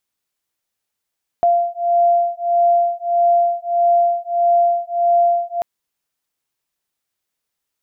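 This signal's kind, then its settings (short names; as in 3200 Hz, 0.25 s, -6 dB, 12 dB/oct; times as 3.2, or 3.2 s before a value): beating tones 691 Hz, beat 1.6 Hz, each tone -16 dBFS 4.19 s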